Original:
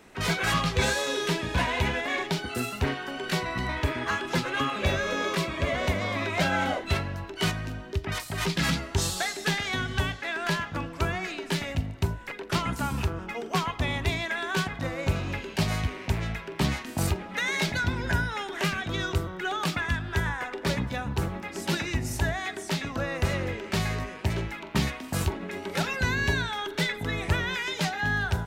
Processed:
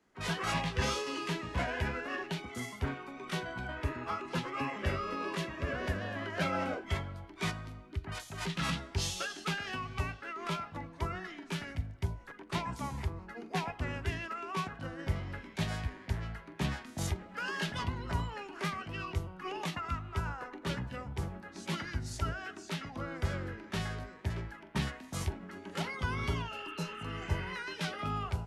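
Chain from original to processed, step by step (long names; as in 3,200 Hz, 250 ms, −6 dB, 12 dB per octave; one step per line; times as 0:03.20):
healed spectral selection 0:26.55–0:27.50, 1,200–4,900 Hz both
formants moved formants −4 semitones
multiband upward and downward expander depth 40%
level −8 dB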